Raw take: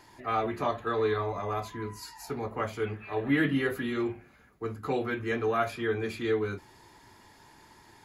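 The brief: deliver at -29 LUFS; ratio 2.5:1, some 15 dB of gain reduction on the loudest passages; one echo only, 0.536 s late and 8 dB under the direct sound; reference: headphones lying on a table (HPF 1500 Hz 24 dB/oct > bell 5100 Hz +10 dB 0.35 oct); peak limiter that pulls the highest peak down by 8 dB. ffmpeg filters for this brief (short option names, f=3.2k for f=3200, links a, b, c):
-af "acompressor=threshold=-46dB:ratio=2.5,alimiter=level_in=14dB:limit=-24dB:level=0:latency=1,volume=-14dB,highpass=f=1.5k:w=0.5412,highpass=f=1.5k:w=1.3066,equalizer=f=5.1k:t=o:w=0.35:g=10,aecho=1:1:536:0.398,volume=23.5dB"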